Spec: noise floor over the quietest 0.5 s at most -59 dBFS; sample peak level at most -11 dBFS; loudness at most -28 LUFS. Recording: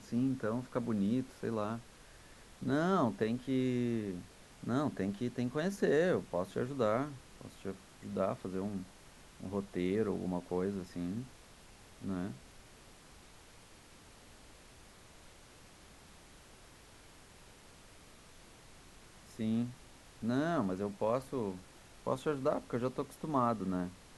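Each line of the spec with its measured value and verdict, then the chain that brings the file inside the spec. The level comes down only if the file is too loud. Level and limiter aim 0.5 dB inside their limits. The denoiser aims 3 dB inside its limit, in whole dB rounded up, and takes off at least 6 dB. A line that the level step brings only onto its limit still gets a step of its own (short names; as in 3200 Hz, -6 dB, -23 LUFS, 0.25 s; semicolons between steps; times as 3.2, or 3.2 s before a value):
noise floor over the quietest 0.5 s -58 dBFS: fail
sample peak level -17.5 dBFS: OK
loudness -36.0 LUFS: OK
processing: denoiser 6 dB, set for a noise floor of -58 dBFS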